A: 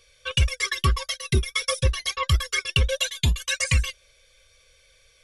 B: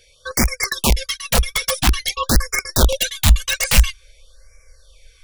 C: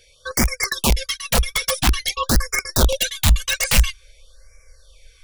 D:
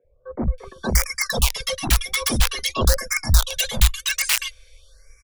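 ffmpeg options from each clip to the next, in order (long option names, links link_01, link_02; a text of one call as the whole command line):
ffmpeg -i in.wav -af "aeval=exprs='(mod(5.62*val(0)+1,2)-1)/5.62':channel_layout=same,asubboost=boost=6:cutoff=61,afftfilt=real='re*(1-between(b*sr/1024,260*pow(3500/260,0.5+0.5*sin(2*PI*0.49*pts/sr))/1.41,260*pow(3500/260,0.5+0.5*sin(2*PI*0.49*pts/sr))*1.41))':imag='im*(1-between(b*sr/1024,260*pow(3500/260,0.5+0.5*sin(2*PI*0.49*pts/sr))/1.41,260*pow(3500/260,0.5+0.5*sin(2*PI*0.49*pts/sr))*1.41))':win_size=1024:overlap=0.75,volume=5dB" out.wav
ffmpeg -i in.wav -af "acontrast=27,volume=-5.5dB" out.wav
ffmpeg -i in.wav -filter_complex "[0:a]acrossover=split=190|880[link_01][link_02][link_03];[link_01]adelay=40[link_04];[link_03]adelay=580[link_05];[link_04][link_02][link_05]amix=inputs=3:normalize=0,volume=-1dB" out.wav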